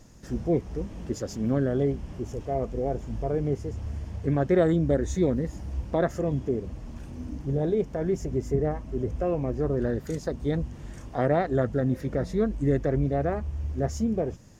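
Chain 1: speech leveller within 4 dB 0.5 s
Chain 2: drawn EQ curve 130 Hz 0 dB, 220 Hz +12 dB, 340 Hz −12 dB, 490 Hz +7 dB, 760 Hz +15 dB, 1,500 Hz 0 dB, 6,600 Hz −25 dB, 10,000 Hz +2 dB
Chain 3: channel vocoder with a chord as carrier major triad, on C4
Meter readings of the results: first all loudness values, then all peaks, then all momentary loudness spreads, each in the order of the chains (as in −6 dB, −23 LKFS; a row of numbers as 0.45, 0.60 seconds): −28.5, −21.5, −28.5 LKFS; −13.0, −3.0, −8.5 dBFS; 6, 15, 12 LU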